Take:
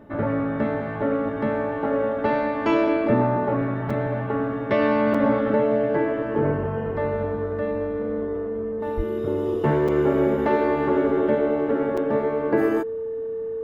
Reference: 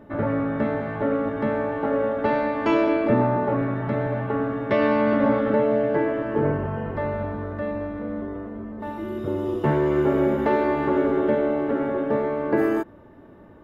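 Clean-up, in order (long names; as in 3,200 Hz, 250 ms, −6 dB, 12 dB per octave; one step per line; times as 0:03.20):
notch filter 450 Hz, Q 30
0:08.96–0:09.08: high-pass filter 140 Hz 24 dB per octave
repair the gap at 0:03.90/0:05.14/0:09.88/0:11.97, 5 ms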